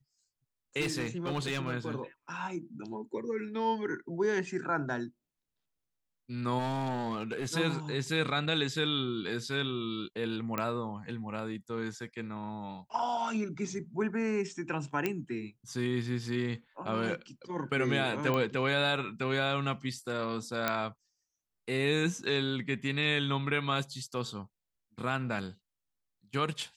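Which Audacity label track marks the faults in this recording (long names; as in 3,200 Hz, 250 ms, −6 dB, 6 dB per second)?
0.800000	1.730000	clipping −27.5 dBFS
6.580000	7.460000	clipping −29.5 dBFS
10.580000	10.580000	click −17 dBFS
15.060000	15.060000	click −16 dBFS
18.340000	18.340000	click −18 dBFS
20.680000	20.680000	click −13 dBFS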